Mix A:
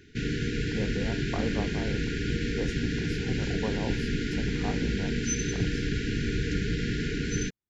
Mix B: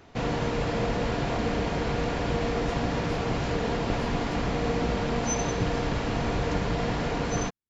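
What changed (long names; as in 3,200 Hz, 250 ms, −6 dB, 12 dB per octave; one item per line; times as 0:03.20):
speech −4.0 dB
background: remove linear-phase brick-wall band-stop 460–1,400 Hz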